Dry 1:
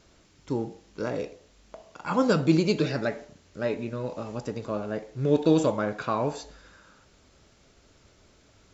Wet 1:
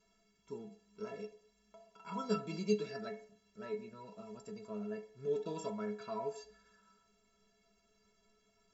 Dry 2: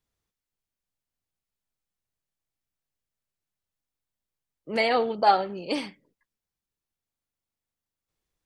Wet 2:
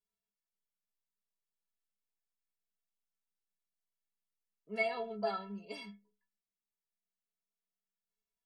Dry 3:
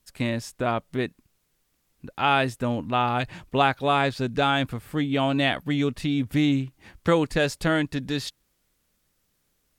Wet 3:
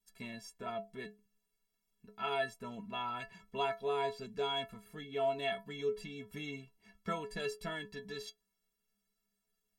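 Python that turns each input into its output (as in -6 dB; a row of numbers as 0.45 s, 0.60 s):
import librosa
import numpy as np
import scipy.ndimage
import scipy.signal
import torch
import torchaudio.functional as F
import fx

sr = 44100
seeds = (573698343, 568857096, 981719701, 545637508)

y = fx.stiff_resonator(x, sr, f0_hz=200.0, decay_s=0.29, stiffness=0.03)
y = F.gain(torch.from_numpy(y), -1.0).numpy()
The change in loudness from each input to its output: -14.0 LU, -13.5 LU, -14.5 LU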